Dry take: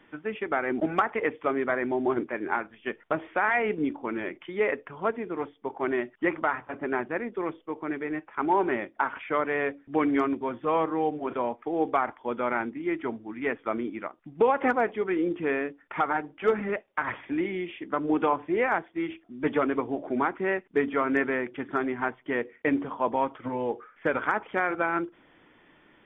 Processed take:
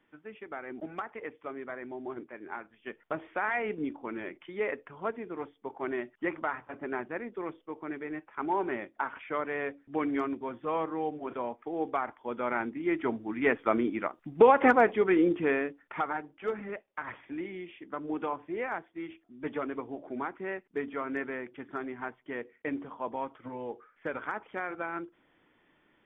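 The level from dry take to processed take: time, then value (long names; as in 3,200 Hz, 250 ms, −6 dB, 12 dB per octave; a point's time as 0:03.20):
0:02.41 −13 dB
0:03.20 −6 dB
0:12.17 −6 dB
0:13.31 +3 dB
0:15.19 +3 dB
0:16.40 −9 dB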